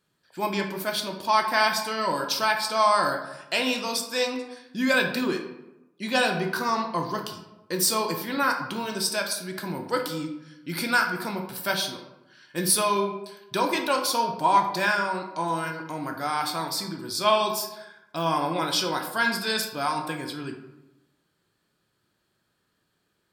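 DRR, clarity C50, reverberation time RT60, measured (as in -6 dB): 3.0 dB, 7.0 dB, 0.95 s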